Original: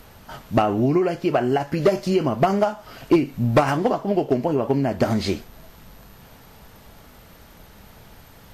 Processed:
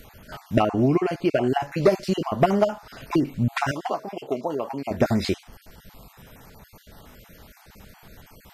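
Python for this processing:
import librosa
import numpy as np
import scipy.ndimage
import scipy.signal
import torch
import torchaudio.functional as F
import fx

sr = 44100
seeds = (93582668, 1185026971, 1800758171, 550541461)

y = fx.spec_dropout(x, sr, seeds[0], share_pct=28)
y = fx.highpass(y, sr, hz=700.0, slope=6, at=(3.71, 4.91))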